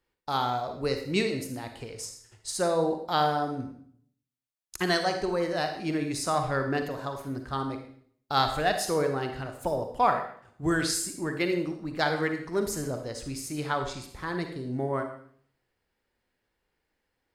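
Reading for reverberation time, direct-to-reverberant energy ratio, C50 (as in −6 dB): 0.55 s, 5.5 dB, 6.5 dB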